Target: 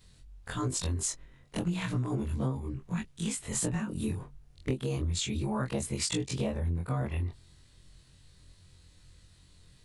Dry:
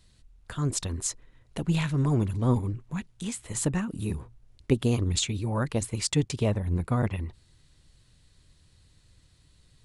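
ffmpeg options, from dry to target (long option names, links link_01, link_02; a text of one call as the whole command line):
ffmpeg -i in.wav -af "afftfilt=real='re':imag='-im':win_size=2048:overlap=0.75,acompressor=threshold=-34dB:ratio=12,volume=6.5dB" out.wav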